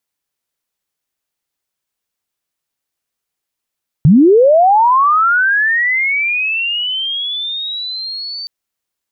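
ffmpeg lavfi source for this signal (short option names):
-f lavfi -i "aevalsrc='pow(10,(-3.5-19*t/4.42)/20)*sin(2*PI*(130*t+4470*t*t/(2*4.42)))':d=4.42:s=44100"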